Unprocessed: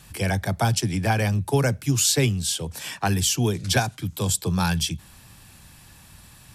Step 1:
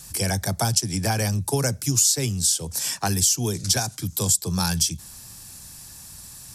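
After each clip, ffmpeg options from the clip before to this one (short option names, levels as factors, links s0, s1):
-af "highshelf=f=4100:t=q:w=1.5:g=10,acompressor=threshold=0.112:ratio=3"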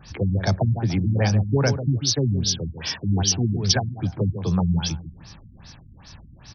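-filter_complex "[0:a]asplit=2[s0][s1];[s1]adelay=145,lowpass=f=1200:p=1,volume=0.355,asplit=2[s2][s3];[s3]adelay=145,lowpass=f=1200:p=1,volume=0.29,asplit=2[s4][s5];[s5]adelay=145,lowpass=f=1200:p=1,volume=0.29[s6];[s0][s2][s4][s6]amix=inputs=4:normalize=0,afftfilt=real='re*lt(b*sr/1024,270*pow(6500/270,0.5+0.5*sin(2*PI*2.5*pts/sr)))':imag='im*lt(b*sr/1024,270*pow(6500/270,0.5+0.5*sin(2*PI*2.5*pts/sr)))':win_size=1024:overlap=0.75,volume=1.58"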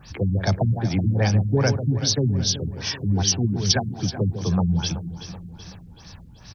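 -af "acrusher=bits=11:mix=0:aa=0.000001,aecho=1:1:379|758|1137|1516|1895:0.224|0.112|0.056|0.028|0.014"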